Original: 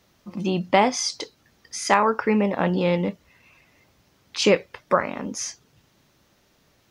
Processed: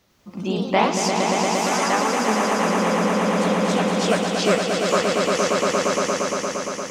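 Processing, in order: ever faster or slower copies 102 ms, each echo +2 st, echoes 3; echo with a slow build-up 116 ms, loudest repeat 5, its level -5 dB; gain riding within 3 dB 0.5 s; trim -3.5 dB

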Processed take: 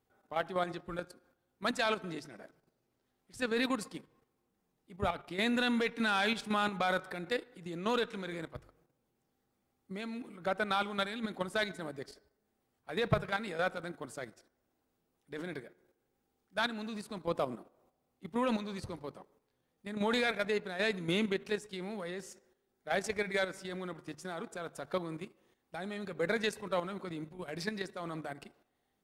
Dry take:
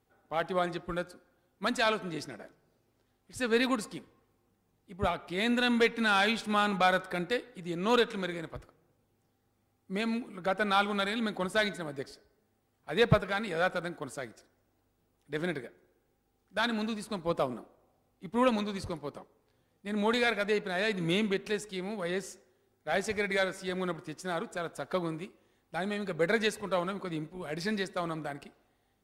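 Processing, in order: hum notches 50/100/150 Hz; level held to a coarse grid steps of 10 dB

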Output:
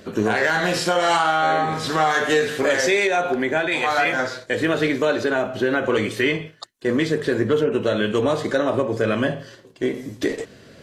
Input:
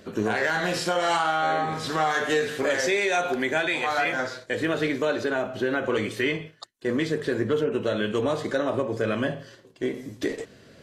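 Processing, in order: 3.07–3.72 s: treble shelf 2.4 kHz -9 dB; trim +5 dB

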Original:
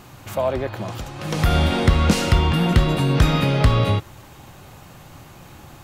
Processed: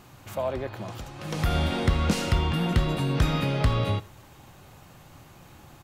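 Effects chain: delay 83 ms -21.5 dB; trim -7 dB

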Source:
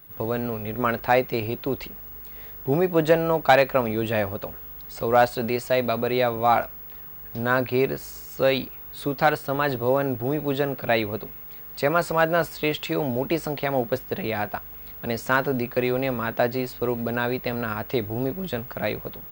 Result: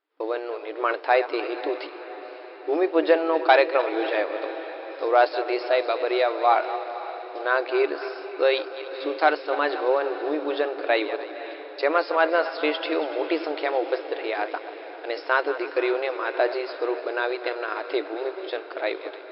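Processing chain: backward echo that repeats 147 ms, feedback 53%, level -13 dB; gate with hold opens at -26 dBFS; echo that smears into a reverb 528 ms, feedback 61%, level -13.5 dB; FFT band-pass 290–5400 Hz

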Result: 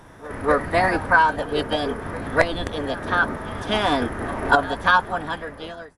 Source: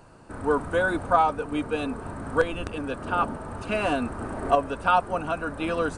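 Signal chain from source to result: fade out at the end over 1.09 s; pre-echo 246 ms -19 dB; formant shift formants +4 st; trim +4.5 dB

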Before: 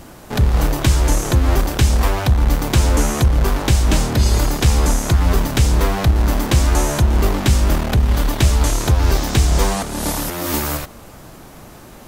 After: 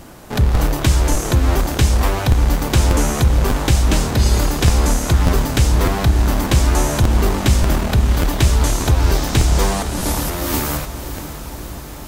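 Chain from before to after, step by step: echo that smears into a reverb 565 ms, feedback 70%, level -12.5 dB; crackling interface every 0.59 s, samples 512, repeat, from 0.54 s

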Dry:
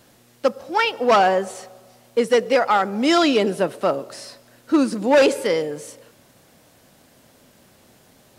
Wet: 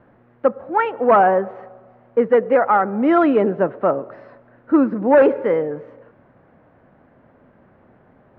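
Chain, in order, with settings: low-pass 1.7 kHz 24 dB/octave; trim +2.5 dB

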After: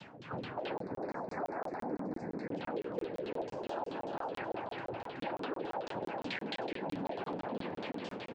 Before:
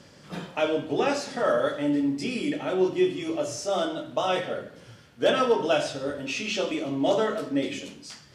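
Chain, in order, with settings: peak limiter -23.5 dBFS, peak gain reduction 11 dB; noise-vocoded speech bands 8; frequency-shifting echo 129 ms, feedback 37%, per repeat +120 Hz, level -11.5 dB; LFO low-pass saw down 4.6 Hz 320–3900 Hz; feedback delay 374 ms, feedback 37%, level -7 dB; compression 4:1, threshold -37 dBFS, peak gain reduction 15.5 dB; 0.80–2.52 s: Butterworth band-stop 3.1 kHz, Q 1.1; crackling interface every 0.17 s, samples 1024, zero, from 0.78 s

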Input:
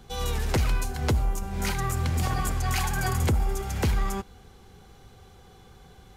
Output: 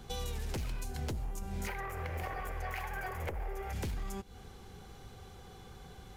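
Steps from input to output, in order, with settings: one-sided wavefolder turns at -22 dBFS; 1.67–3.73 s: graphic EQ 125/250/500/1000/2000/4000/8000 Hz -7/-9/+10/+4/+10/-8/-11 dB; compression 6:1, threshold -35 dBFS, peak gain reduction 15.5 dB; dynamic bell 1.2 kHz, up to -5 dB, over -54 dBFS, Q 1.2

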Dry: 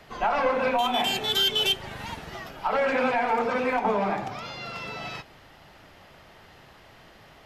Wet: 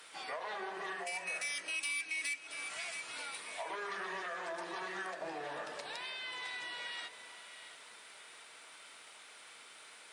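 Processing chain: wide varispeed 0.737×; high-pass 150 Hz 12 dB/octave; differentiator; band-stop 540 Hz, Q 12; echo whose repeats swap between lows and highs 338 ms, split 990 Hz, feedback 60%, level -13 dB; compression 3:1, threshold -51 dBFS, peak gain reduction 16 dB; Chebyshev shaper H 5 -26 dB, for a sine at -34.5 dBFS; trim +9 dB

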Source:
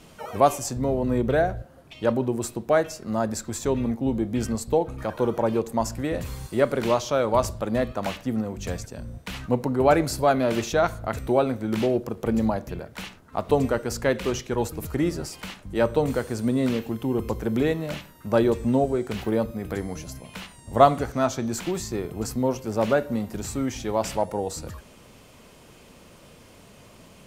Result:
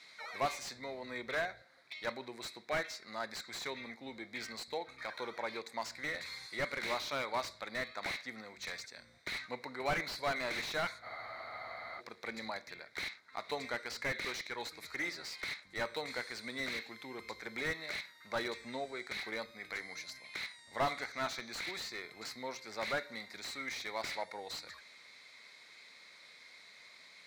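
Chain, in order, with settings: two resonant band-passes 2.9 kHz, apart 0.89 oct; spectral freeze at 11.06 s, 0.94 s; slew-rate limiter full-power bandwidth 16 Hz; trim +8 dB

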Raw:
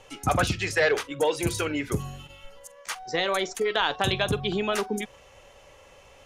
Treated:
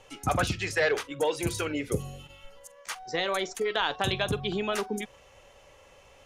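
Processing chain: 1.73–2.23 s: graphic EQ with 31 bands 500 Hz +12 dB, 1 kHz -9 dB, 1.6 kHz -9 dB, 10 kHz +5 dB; trim -3 dB

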